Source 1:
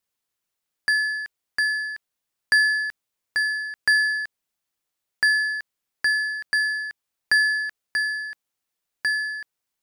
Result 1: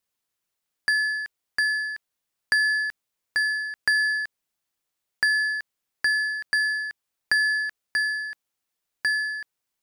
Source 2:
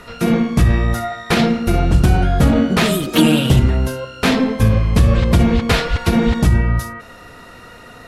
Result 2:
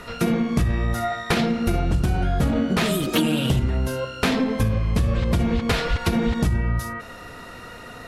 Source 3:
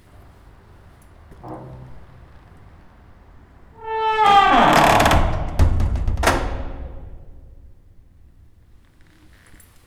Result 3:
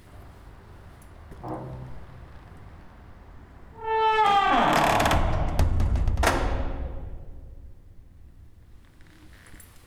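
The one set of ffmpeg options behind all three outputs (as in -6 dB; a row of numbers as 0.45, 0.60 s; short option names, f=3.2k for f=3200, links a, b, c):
-af "acompressor=threshold=-18dB:ratio=5"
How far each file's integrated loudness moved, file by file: -1.5, -7.0, -7.5 LU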